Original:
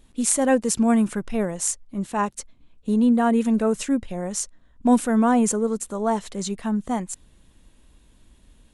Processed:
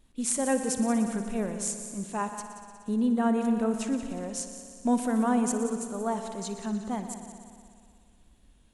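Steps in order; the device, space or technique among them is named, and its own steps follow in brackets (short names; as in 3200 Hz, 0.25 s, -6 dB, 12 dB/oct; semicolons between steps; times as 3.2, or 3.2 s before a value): multi-head tape echo (multi-head echo 60 ms, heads all three, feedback 67%, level -15 dB; wow and flutter 20 cents); gain -7.5 dB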